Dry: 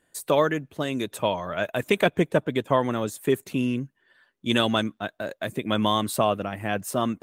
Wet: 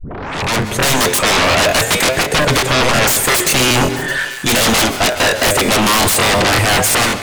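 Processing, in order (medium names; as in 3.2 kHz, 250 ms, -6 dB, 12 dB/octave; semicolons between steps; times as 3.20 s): tape start-up on the opening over 0.72 s; peaking EQ 6.5 kHz +4.5 dB 0.21 oct; flange 0.42 Hz, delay 6.5 ms, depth 5.2 ms, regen +82%; graphic EQ 250/500/2000/8000 Hz -8/+7/+4/+9 dB; peak limiter -17 dBFS, peak gain reduction 9 dB; reverse; compression 10:1, threshold -40 dBFS, peak gain reduction 18 dB; reverse; sine folder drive 20 dB, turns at -28 dBFS; feedback echo behind a high-pass 616 ms, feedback 45%, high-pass 1.4 kHz, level -16 dB; level rider gain up to 15.5 dB; on a send at -10 dB: reverberation RT60 0.75 s, pre-delay 119 ms; on the sum: crackling interface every 0.18 s, samples 1024, repeat, from 0.42 s; endings held to a fixed fall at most 120 dB/s; trim +3 dB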